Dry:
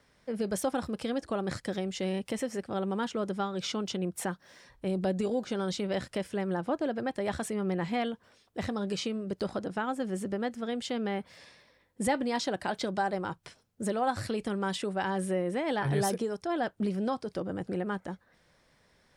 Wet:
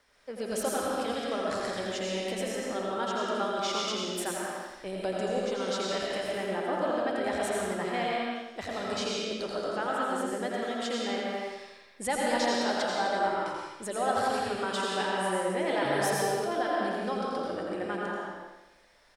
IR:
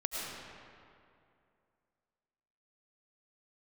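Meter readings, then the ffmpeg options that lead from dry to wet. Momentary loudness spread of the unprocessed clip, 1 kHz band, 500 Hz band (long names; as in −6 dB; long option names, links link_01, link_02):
6 LU, +4.0 dB, +2.5 dB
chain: -filter_complex "[0:a]equalizer=frequency=140:width=0.58:gain=-14,aecho=1:1:84|168|252|336|420|504|588:0.473|0.251|0.133|0.0704|0.0373|0.0198|0.0105[link_01];[1:a]atrim=start_sample=2205,afade=type=out:start_time=0.43:duration=0.01,atrim=end_sample=19404[link_02];[link_01][link_02]afir=irnorm=-1:irlink=0,volume=1dB"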